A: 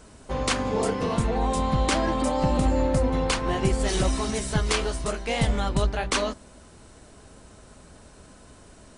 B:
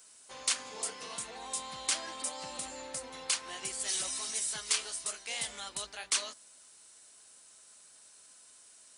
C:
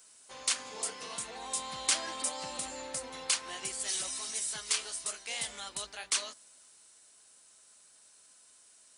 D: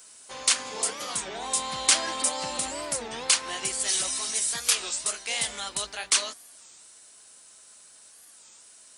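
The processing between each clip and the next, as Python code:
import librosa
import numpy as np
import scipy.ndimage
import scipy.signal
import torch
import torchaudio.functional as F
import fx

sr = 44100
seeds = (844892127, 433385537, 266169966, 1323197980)

y1 = np.diff(x, prepend=0.0)
y1 = y1 * 10.0 ** (1.5 / 20.0)
y2 = fx.rider(y1, sr, range_db=10, speed_s=2.0)
y3 = fx.record_warp(y2, sr, rpm=33.33, depth_cents=250.0)
y3 = y3 * 10.0 ** (8.0 / 20.0)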